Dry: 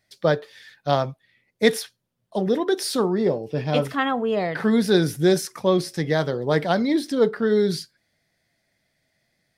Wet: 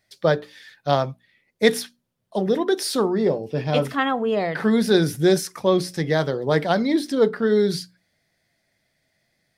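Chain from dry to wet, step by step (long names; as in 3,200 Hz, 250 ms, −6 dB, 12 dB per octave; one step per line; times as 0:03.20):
mains-hum notches 60/120/180/240/300 Hz
level +1 dB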